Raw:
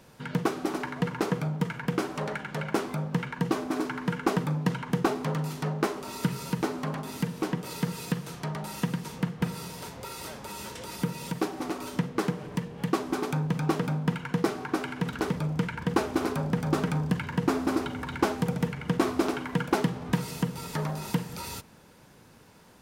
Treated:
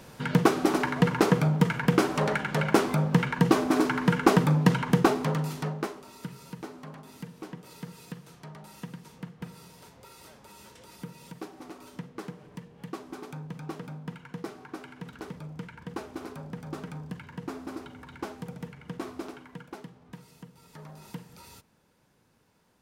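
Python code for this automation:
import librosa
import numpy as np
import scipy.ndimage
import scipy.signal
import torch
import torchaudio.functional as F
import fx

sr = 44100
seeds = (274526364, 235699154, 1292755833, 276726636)

y = fx.gain(x, sr, db=fx.line((4.82, 6.0), (5.65, -1.0), (6.11, -11.5), (19.17, -11.5), (19.89, -19.0), (20.59, -19.0), (21.03, -12.5)))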